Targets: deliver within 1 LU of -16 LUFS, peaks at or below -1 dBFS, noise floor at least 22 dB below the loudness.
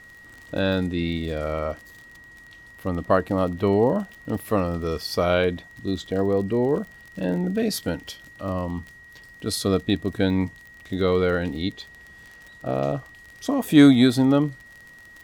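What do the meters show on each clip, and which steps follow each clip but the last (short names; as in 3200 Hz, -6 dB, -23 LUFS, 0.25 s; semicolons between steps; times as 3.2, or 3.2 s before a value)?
ticks 31/s; steady tone 1900 Hz; tone level -45 dBFS; loudness -23.5 LUFS; peak -3.5 dBFS; loudness target -16.0 LUFS
-> de-click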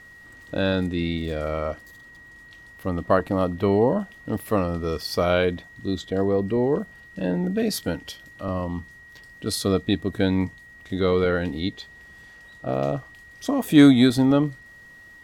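ticks 0/s; steady tone 1900 Hz; tone level -45 dBFS
-> notch 1900 Hz, Q 30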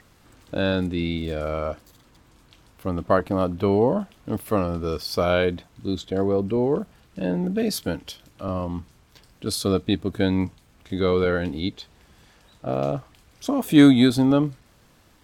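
steady tone none; loudness -23.5 LUFS; peak -3.5 dBFS; loudness target -16.0 LUFS
-> gain +7.5 dB; limiter -1 dBFS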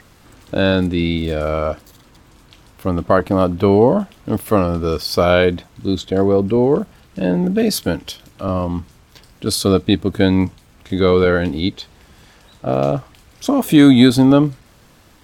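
loudness -16.5 LUFS; peak -1.0 dBFS; noise floor -49 dBFS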